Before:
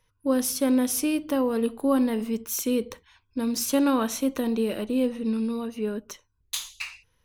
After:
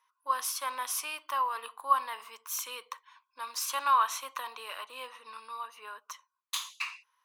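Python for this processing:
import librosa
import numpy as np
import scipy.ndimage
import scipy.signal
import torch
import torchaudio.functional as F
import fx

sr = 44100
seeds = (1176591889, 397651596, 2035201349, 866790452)

y = fx.dynamic_eq(x, sr, hz=2900.0, q=0.96, threshold_db=-44.0, ratio=4.0, max_db=4)
y = fx.ladder_highpass(y, sr, hz=990.0, resonance_pct=75)
y = y * librosa.db_to_amplitude(6.0)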